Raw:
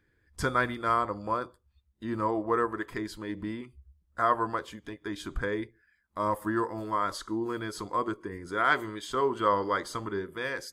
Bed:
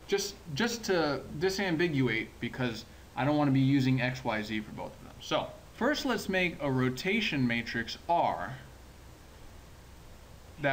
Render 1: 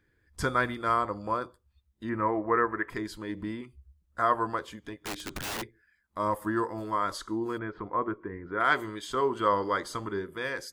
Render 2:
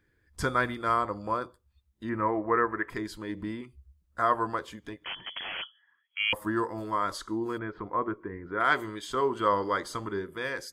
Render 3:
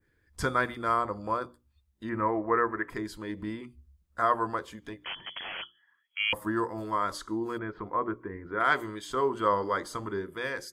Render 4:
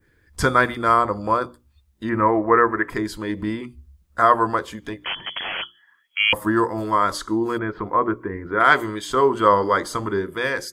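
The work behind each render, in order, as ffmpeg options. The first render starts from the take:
-filter_complex "[0:a]asettb=1/sr,asplit=3[a][b][c];[a]atrim=end=2.094[d];[b]atrim=start=2.09:end=2.9,asetpts=PTS-STARTPTS,afade=t=in:d=0.004:c=qsin,afade=t=out:st=0.806:d=0.004:c=qsin,highshelf=f=2.9k:t=q:w=3:g=-12[e];[c]atrim=start=2.896[f];[d][e]acrossfade=d=0.004:c1=hsin:c2=qsin[g];[g][f]acrossfade=d=0.004:c1=qsin:c2=hsin,asplit=3[h][i][j];[h]afade=t=out:st=4.99:d=0.02[k];[i]aeval=exprs='(mod(31.6*val(0)+1,2)-1)/31.6':c=same,afade=t=in:st=4.99:d=0.02,afade=t=out:st=5.61:d=0.02[l];[j]afade=t=in:st=5.61:d=0.02[m];[k][l][m]amix=inputs=3:normalize=0,asplit=3[n][o][p];[n]afade=t=out:st=7.57:d=0.02[q];[o]lowpass=f=2.2k:w=0.5412,lowpass=f=2.2k:w=1.3066,afade=t=in:st=7.57:d=0.02,afade=t=out:st=8.59:d=0.02[r];[p]afade=t=in:st=8.59:d=0.02[s];[q][r][s]amix=inputs=3:normalize=0"
-filter_complex "[0:a]asettb=1/sr,asplit=3[a][b][c];[a]atrim=end=5.044[d];[b]atrim=start=5.04:end=6.33,asetpts=PTS-STARTPTS,afade=t=in:d=0.004:c=qsin,afade=t=out:st=1.286:d=0.004:c=qsin,lowpass=f=2.9k:t=q:w=0.5098,lowpass=f=2.9k:t=q:w=0.6013,lowpass=f=2.9k:t=q:w=0.9,lowpass=f=2.9k:t=q:w=2.563,afreqshift=-3400[e];[c]atrim=start=6.326[f];[d][e]acrossfade=d=0.004:c1=hsin:c2=qsin[g];[g][f]acrossfade=d=0.004:c1=qsin:c2=hsin"
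-af "adynamicequalizer=threshold=0.00562:dfrequency=3300:dqfactor=0.79:tfrequency=3300:tqfactor=0.79:attack=5:release=100:ratio=0.375:range=2:mode=cutabove:tftype=bell,bandreject=f=60:t=h:w=6,bandreject=f=120:t=h:w=6,bandreject=f=180:t=h:w=6,bandreject=f=240:t=h:w=6,bandreject=f=300:t=h:w=6,bandreject=f=360:t=h:w=6"
-af "volume=10dB"

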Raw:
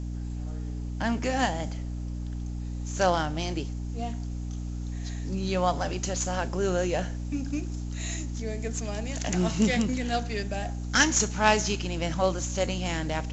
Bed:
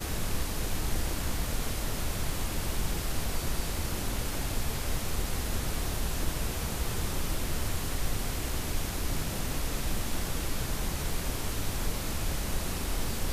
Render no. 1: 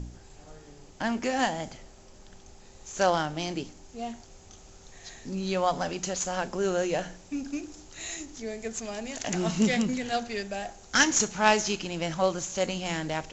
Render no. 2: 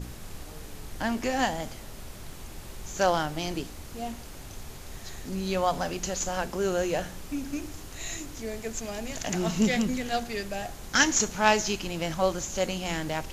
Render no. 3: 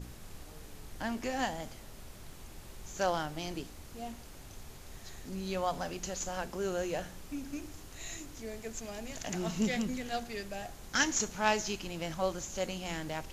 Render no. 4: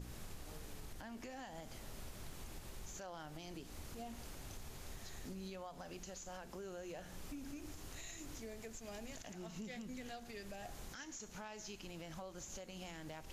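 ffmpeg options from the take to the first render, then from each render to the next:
-af "bandreject=f=60:t=h:w=4,bandreject=f=120:t=h:w=4,bandreject=f=180:t=h:w=4,bandreject=f=240:t=h:w=4,bandreject=f=300:t=h:w=4"
-filter_complex "[1:a]volume=-11dB[a];[0:a][a]amix=inputs=2:normalize=0"
-af "volume=-7dB"
-af "acompressor=threshold=-42dB:ratio=6,alimiter=level_in=15dB:limit=-24dB:level=0:latency=1:release=151,volume=-15dB"

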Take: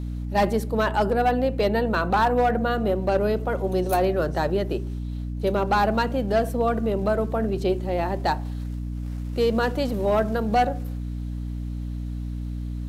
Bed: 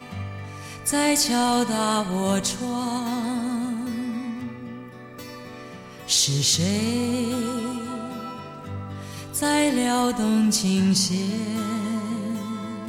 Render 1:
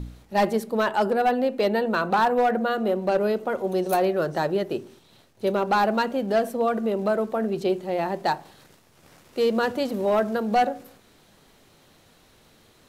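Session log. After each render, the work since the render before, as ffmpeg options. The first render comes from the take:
-af "bandreject=f=60:t=h:w=4,bandreject=f=120:t=h:w=4,bandreject=f=180:t=h:w=4,bandreject=f=240:t=h:w=4,bandreject=f=300:t=h:w=4"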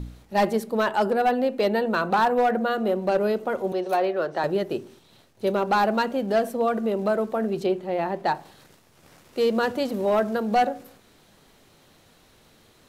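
-filter_complex "[0:a]asettb=1/sr,asplit=3[a][b][c];[a]atrim=end=3.724[d];[b]atrim=start=3.72:end=4.44,asetpts=PTS-STARTPTS,afade=t=in:d=0.004:c=qsin,afade=t=out:st=0.716:d=0.004:c=qsin,acrossover=split=320 4800:gain=0.251 1 0.224[e][f][g];[e][f][g]amix=inputs=3:normalize=0[h];[c]atrim=start=4.436[i];[d][h]acrossfade=d=0.004:c1=hsin:c2=qsin[j];[j][i]acrossfade=d=0.004:c1=qsin:c2=hsin,asettb=1/sr,asplit=3[k][l][m];[k]atrim=end=7.664[n];[l]atrim=start=7.66:end=8.35,asetpts=PTS-STARTPTS,afade=t=in:d=0.004:c=qsin,afade=t=out:st=0.686:d=0.004:c=qsin,bass=f=250:g=-1,treble=f=4k:g=-8[o];[m]atrim=start=8.346[p];[n][o]acrossfade=d=0.004:c1=hsin:c2=qsin[q];[q][p]acrossfade=d=0.004:c1=qsin:c2=hsin"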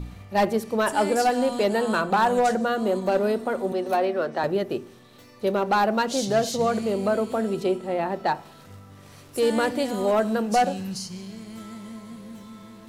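-filter_complex "[1:a]volume=-12.5dB[a];[0:a][a]amix=inputs=2:normalize=0"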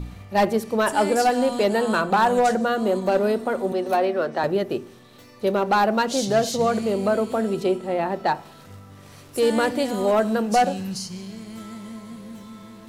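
-af "volume=2dB"

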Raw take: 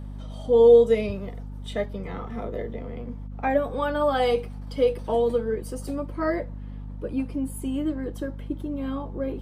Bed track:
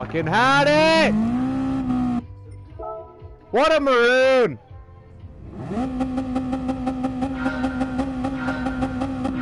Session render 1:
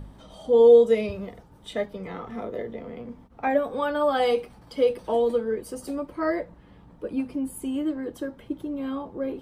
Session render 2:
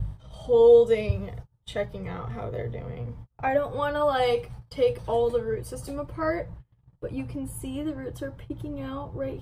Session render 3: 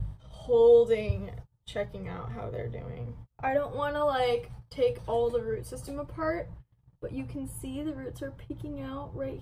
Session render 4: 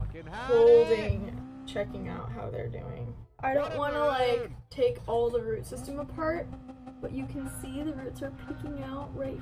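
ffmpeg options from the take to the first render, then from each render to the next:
-af "bandreject=f=50:t=h:w=4,bandreject=f=100:t=h:w=4,bandreject=f=150:t=h:w=4,bandreject=f=200:t=h:w=4,bandreject=f=250:t=h:w=4"
-af "agate=range=-30dB:threshold=-46dB:ratio=16:detection=peak,lowshelf=f=170:t=q:w=3:g=10"
-af "volume=-3.5dB"
-filter_complex "[1:a]volume=-21dB[a];[0:a][a]amix=inputs=2:normalize=0"

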